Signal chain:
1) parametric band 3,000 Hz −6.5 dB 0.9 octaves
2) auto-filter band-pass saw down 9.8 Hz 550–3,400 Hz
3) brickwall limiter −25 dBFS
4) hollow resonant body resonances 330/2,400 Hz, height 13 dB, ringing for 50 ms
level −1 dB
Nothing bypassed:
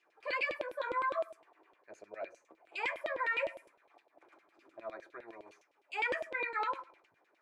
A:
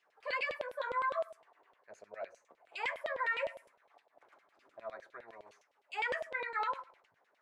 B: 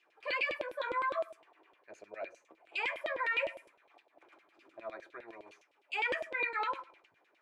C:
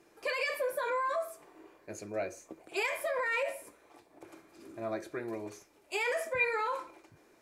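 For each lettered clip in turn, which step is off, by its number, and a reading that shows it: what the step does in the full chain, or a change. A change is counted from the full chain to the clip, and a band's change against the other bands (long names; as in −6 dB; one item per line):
4, 250 Hz band −8.0 dB
1, 4 kHz band +4.0 dB
2, 250 Hz band +7.0 dB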